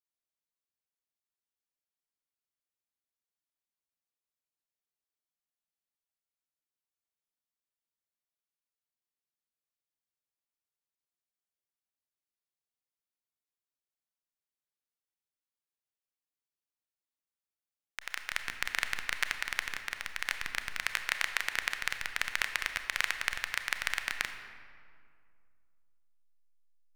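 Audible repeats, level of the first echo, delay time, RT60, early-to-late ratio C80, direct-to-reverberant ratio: no echo audible, no echo audible, no echo audible, 2.2 s, 9.0 dB, 7.0 dB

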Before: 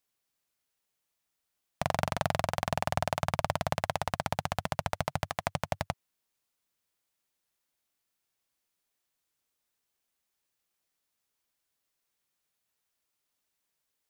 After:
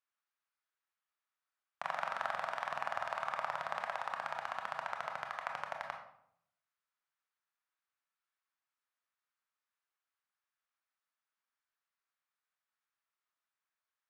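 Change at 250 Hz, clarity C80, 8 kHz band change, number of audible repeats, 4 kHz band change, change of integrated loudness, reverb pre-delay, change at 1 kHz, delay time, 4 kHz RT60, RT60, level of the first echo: −24.0 dB, 9.5 dB, −17.5 dB, no echo audible, −11.0 dB, −6.5 dB, 22 ms, −5.0 dB, no echo audible, 0.45 s, 0.70 s, no echo audible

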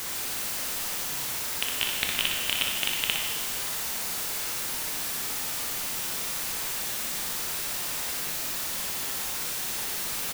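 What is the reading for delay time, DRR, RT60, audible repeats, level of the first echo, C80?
60 ms, −1.0 dB, 1.8 s, 1, −6.0 dB, 3.5 dB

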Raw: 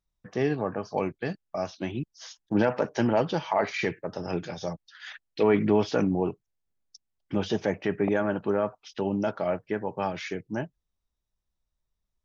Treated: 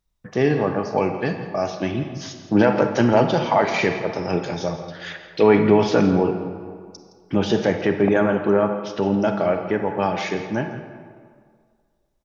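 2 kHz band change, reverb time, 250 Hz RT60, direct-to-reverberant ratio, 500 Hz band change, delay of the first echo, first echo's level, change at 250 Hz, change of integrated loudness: +8.0 dB, 2.0 s, 1.8 s, 5.5 dB, +8.0 dB, 166 ms, −14.5 dB, +8.0 dB, +8.0 dB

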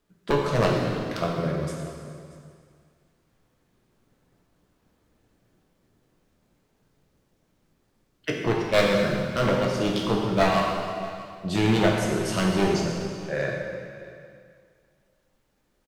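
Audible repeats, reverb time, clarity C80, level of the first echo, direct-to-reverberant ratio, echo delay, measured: 1, 2.2 s, 2.5 dB, −19.5 dB, −1.5 dB, 634 ms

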